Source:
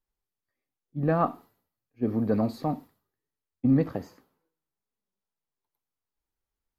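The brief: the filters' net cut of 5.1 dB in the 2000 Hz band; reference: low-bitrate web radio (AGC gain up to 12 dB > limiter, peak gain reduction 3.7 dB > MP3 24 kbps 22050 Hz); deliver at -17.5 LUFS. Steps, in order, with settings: bell 2000 Hz -7 dB; AGC gain up to 12 dB; limiter -16.5 dBFS; gain +12.5 dB; MP3 24 kbps 22050 Hz

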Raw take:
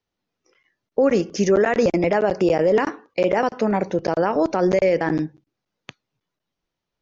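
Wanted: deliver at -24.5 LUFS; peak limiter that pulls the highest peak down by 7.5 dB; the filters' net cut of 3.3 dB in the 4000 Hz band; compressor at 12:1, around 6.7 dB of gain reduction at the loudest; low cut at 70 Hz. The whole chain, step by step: HPF 70 Hz; bell 4000 Hz -5 dB; compressor 12:1, threshold -20 dBFS; gain +3.5 dB; limiter -14.5 dBFS

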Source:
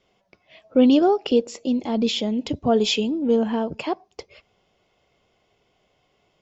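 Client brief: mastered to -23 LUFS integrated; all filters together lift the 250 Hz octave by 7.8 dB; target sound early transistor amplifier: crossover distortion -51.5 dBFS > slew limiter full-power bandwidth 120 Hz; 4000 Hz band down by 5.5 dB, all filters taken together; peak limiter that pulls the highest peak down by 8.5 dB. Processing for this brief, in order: bell 250 Hz +8.5 dB; bell 4000 Hz -7.5 dB; limiter -8.5 dBFS; crossover distortion -51.5 dBFS; slew limiter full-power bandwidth 120 Hz; gain -4.5 dB

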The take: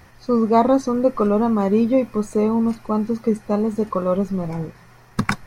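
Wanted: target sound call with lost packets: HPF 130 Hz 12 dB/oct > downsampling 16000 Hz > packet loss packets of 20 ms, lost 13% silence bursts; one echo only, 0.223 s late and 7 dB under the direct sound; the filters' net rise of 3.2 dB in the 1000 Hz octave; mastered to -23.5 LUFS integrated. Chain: HPF 130 Hz 12 dB/oct; bell 1000 Hz +4 dB; echo 0.223 s -7 dB; downsampling 16000 Hz; packet loss packets of 20 ms, lost 13% silence bursts; gain -4 dB

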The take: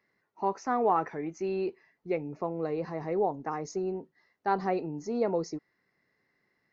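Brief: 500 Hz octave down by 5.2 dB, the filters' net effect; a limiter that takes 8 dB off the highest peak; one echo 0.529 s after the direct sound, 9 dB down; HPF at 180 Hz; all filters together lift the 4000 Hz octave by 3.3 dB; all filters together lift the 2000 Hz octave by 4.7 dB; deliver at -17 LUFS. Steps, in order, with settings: HPF 180 Hz; bell 500 Hz -7 dB; bell 2000 Hz +6 dB; bell 4000 Hz +3 dB; limiter -23.5 dBFS; echo 0.529 s -9 dB; gain +19.5 dB

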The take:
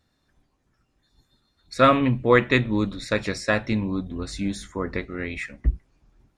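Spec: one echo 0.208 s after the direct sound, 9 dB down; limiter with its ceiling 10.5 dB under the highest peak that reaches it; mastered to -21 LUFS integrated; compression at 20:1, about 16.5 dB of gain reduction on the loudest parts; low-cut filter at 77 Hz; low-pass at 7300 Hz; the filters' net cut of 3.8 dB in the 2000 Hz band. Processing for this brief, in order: HPF 77 Hz; LPF 7300 Hz; bell 2000 Hz -4.5 dB; compressor 20:1, threshold -28 dBFS; limiter -26.5 dBFS; echo 0.208 s -9 dB; gain +16 dB

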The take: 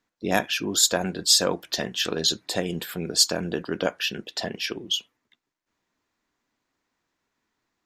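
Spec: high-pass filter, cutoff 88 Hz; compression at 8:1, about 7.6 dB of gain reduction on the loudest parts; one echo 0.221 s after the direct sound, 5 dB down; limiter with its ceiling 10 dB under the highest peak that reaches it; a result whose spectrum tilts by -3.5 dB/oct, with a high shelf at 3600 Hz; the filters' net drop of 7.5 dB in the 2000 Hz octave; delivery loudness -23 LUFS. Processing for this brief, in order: HPF 88 Hz; bell 2000 Hz -8 dB; high shelf 3600 Hz -7.5 dB; compressor 8:1, threshold -27 dBFS; limiter -26.5 dBFS; echo 0.221 s -5 dB; gain +13 dB

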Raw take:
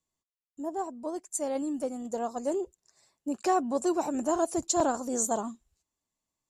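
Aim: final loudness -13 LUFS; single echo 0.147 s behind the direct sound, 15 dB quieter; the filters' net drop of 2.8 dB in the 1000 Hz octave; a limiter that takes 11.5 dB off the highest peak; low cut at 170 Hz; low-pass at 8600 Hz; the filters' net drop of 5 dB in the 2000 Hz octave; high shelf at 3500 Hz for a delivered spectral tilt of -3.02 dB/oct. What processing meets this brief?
HPF 170 Hz; LPF 8600 Hz; bell 1000 Hz -3.5 dB; bell 2000 Hz -7 dB; high shelf 3500 Hz +5.5 dB; limiter -22 dBFS; echo 0.147 s -15 dB; gain +20.5 dB

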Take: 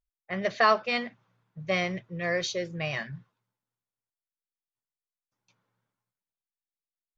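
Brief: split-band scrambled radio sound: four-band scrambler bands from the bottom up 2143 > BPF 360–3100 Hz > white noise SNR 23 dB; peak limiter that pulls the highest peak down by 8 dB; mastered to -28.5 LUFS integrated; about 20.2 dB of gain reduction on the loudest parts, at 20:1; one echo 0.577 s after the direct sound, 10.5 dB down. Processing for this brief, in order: compressor 20:1, threshold -36 dBFS; limiter -32 dBFS; echo 0.577 s -10.5 dB; four-band scrambler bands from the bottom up 2143; BPF 360–3100 Hz; white noise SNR 23 dB; gain +14 dB

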